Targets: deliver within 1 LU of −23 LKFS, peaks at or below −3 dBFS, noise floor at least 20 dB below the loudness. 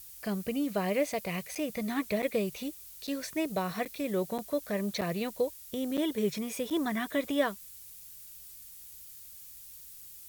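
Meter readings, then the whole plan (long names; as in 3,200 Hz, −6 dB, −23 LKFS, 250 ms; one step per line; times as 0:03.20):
number of dropouts 8; longest dropout 7.1 ms; background noise floor −49 dBFS; target noise floor −53 dBFS; integrated loudness −32.5 LKFS; sample peak −15.5 dBFS; target loudness −23.0 LKFS
→ repair the gap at 0:01.55/0:02.22/0:03.07/0:03.85/0:04.38/0:05.01/0:05.97/0:06.70, 7.1 ms
noise reduction from a noise print 6 dB
level +9.5 dB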